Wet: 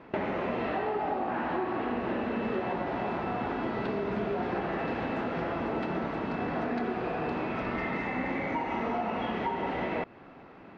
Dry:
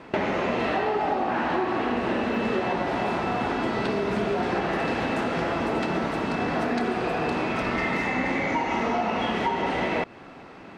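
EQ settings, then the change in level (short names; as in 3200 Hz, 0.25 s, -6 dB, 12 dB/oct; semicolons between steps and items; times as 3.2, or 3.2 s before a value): air absorption 140 m; high shelf 3700 Hz -6.5 dB; -5.0 dB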